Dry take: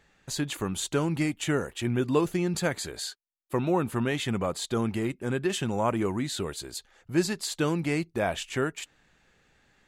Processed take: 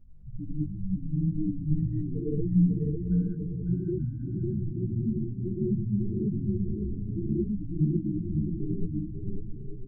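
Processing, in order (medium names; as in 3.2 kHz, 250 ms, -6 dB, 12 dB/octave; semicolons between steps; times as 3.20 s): square wave that keeps the level; low-pass 1.6 kHz 6 dB/octave; tilt EQ -3.5 dB/octave; compression 2.5:1, threshold -33 dBFS, peak gain reduction 15.5 dB; loudest bins only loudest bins 2; hum 50 Hz, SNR 23 dB; bouncing-ball echo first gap 550 ms, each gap 0.6×, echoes 5; gated-style reverb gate 230 ms rising, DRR -8 dB; three-phase chorus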